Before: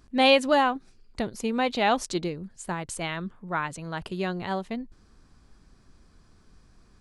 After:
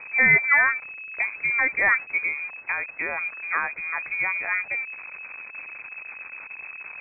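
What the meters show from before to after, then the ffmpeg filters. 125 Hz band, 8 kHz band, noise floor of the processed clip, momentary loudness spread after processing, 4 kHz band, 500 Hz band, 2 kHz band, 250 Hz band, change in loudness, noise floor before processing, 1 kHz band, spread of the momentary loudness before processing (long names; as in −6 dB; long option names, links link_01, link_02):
can't be measured, below −40 dB, −43 dBFS, 19 LU, below −40 dB, −12.5 dB, +12.5 dB, −14.5 dB, +4.5 dB, −59 dBFS, −5.0 dB, 16 LU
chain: -af "aeval=exprs='val(0)+0.5*0.0158*sgn(val(0))':channel_layout=same,lowpass=frequency=2200:width_type=q:width=0.5098,lowpass=frequency=2200:width_type=q:width=0.6013,lowpass=frequency=2200:width_type=q:width=0.9,lowpass=frequency=2200:width_type=q:width=2.563,afreqshift=-2600,volume=2dB"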